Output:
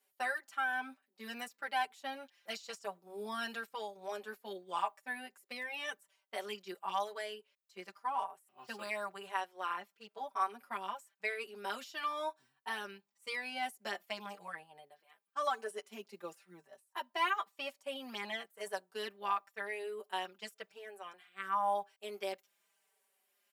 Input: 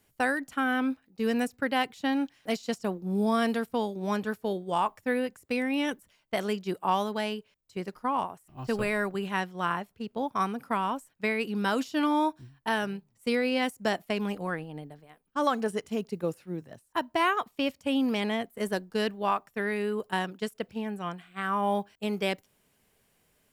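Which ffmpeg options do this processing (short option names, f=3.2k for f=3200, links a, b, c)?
-filter_complex "[0:a]highpass=640,aecho=1:1:5.1:0.7,asplit=2[a][b];[b]adelay=4.9,afreqshift=-0.95[c];[a][c]amix=inputs=2:normalize=1,volume=-5.5dB"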